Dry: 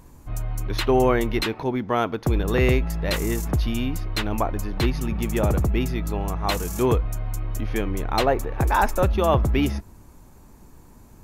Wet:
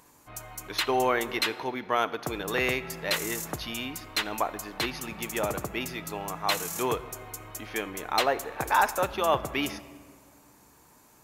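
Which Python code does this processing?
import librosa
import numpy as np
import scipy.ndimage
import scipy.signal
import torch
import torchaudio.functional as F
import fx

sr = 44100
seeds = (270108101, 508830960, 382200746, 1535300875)

y = fx.highpass(x, sr, hz=1000.0, slope=6)
y = fx.room_shoebox(y, sr, seeds[0], volume_m3=3300.0, walls='mixed', distance_m=0.44)
y = y * 10.0 ** (1.0 / 20.0)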